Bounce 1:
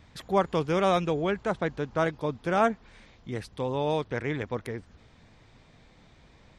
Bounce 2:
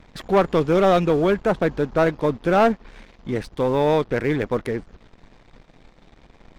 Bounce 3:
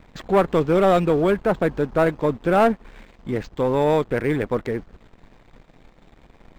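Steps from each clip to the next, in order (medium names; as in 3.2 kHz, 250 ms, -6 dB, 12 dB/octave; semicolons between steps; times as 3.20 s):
tilt EQ -2 dB/octave; waveshaping leveller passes 2; peaking EQ 90 Hz -11.5 dB 1.8 oct; trim +2 dB
decimation joined by straight lines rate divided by 4×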